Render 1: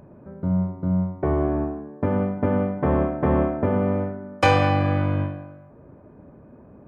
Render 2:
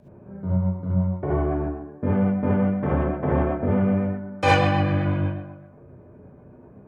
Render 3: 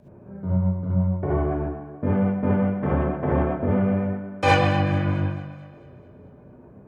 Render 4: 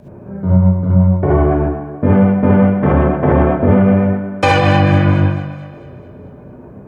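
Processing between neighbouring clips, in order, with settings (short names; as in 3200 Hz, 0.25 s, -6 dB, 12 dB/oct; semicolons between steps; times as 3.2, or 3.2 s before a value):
rotary speaker horn 8 Hz; non-linear reverb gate 90 ms rising, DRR -5.5 dB; gain -4 dB
split-band echo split 360 Hz, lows 0.13 s, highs 0.219 s, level -16 dB
maximiser +12.5 dB; gain -1 dB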